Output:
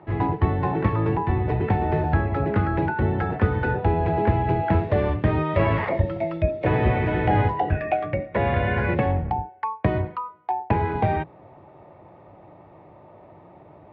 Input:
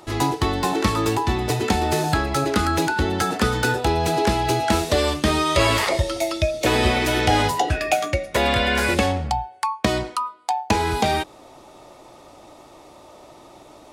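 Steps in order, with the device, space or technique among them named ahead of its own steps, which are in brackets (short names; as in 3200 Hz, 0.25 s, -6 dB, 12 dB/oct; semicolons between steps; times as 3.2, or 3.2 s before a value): sub-octave bass pedal (octaver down 1 oct, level +1 dB; speaker cabinet 68–2000 Hz, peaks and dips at 96 Hz +7 dB, 250 Hz -5 dB, 1300 Hz -7 dB); gain -2 dB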